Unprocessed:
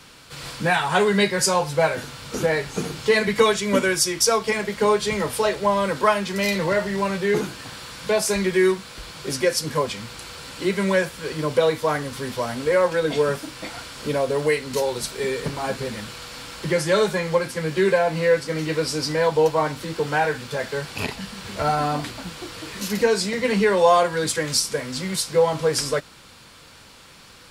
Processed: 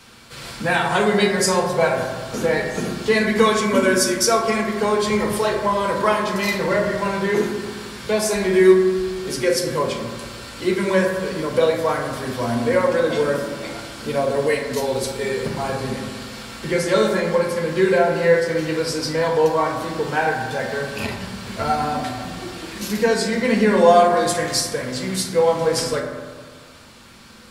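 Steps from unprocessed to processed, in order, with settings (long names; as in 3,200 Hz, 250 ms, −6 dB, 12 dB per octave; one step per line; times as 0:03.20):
0:15.73–0:16.20: variable-slope delta modulation 64 kbit/s
convolution reverb RT60 1.6 s, pre-delay 4 ms, DRR 0.5 dB
level −1 dB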